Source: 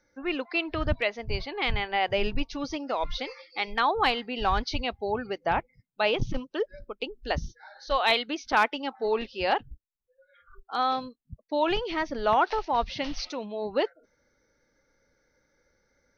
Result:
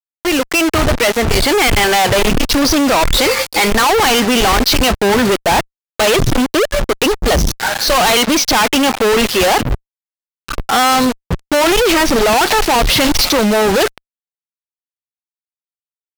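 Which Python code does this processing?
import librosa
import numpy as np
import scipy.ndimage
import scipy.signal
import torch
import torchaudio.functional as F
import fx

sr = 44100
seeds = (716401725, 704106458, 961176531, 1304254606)

y = fx.fade_in_head(x, sr, length_s=1.81)
y = fx.leveller(y, sr, passes=5)
y = fx.fuzz(y, sr, gain_db=44.0, gate_db=-42.0)
y = F.gain(torch.from_numpy(y), 2.5).numpy()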